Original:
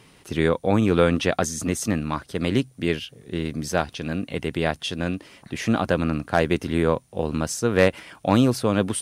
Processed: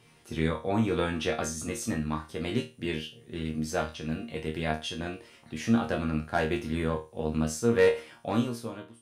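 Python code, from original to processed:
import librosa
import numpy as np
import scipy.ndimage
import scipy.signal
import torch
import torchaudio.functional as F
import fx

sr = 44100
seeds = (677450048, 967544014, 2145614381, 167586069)

y = fx.fade_out_tail(x, sr, length_s=0.91)
y = fx.resonator_bank(y, sr, root=39, chord='fifth', decay_s=0.29)
y = F.gain(torch.from_numpy(y), 3.5).numpy()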